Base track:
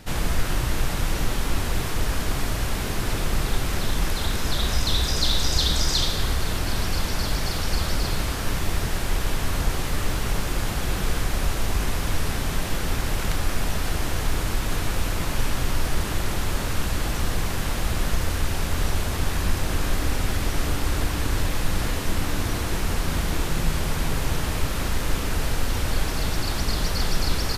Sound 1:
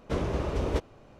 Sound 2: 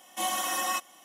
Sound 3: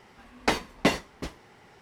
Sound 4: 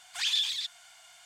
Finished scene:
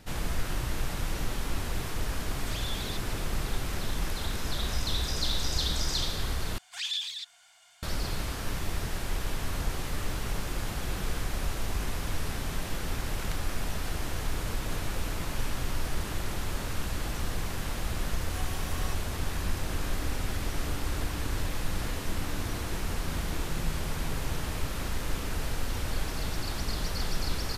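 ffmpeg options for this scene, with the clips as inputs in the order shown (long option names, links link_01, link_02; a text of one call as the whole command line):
ffmpeg -i bed.wav -i cue0.wav -i cue1.wav -i cue2.wav -i cue3.wav -filter_complex "[4:a]asplit=2[link_01][link_02];[0:a]volume=-7.5dB[link_03];[link_01]acompressor=threshold=-32dB:ratio=6:attack=0.2:release=26:knee=6:detection=rms[link_04];[link_03]asplit=2[link_05][link_06];[link_05]atrim=end=6.584[link_07];[link_02]atrim=end=1.25,asetpts=PTS-STARTPTS,volume=-4.5dB[link_08];[link_06]atrim=start=7.826[link_09];[link_04]atrim=end=1.25,asetpts=PTS-STARTPTS,volume=-4dB,afade=type=in:duration=0.004:curve=hsin,afade=type=out:start_time=1.246:duration=0.004:curve=hsin,adelay=2310[link_10];[1:a]atrim=end=1.19,asetpts=PTS-STARTPTS,volume=-17dB,afade=type=in:duration=0.004:curve=hsin,afade=type=out:start_time=1.186:duration=0.004:curve=hsin,adelay=14360[link_11];[2:a]atrim=end=1.04,asetpts=PTS-STARTPTS,volume=-15dB,afade=type=in:duration=0.004:curve=hsin,afade=type=out:start_time=1.036:duration=0.004:curve=hsin,adelay=18150[link_12];[link_07][link_08]acrossfade=duration=0.004:curve1=hsin:curve2=hsin[link_13];[link_13][link_09]acrossfade=duration=0.004:curve1=hsin:curve2=hsin[link_14];[link_14][link_10][link_11][link_12]amix=inputs=4:normalize=0" out.wav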